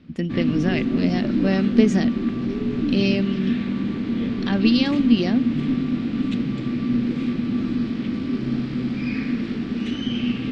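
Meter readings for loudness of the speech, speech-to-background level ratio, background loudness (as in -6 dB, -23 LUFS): -22.5 LUFS, 2.0 dB, -24.5 LUFS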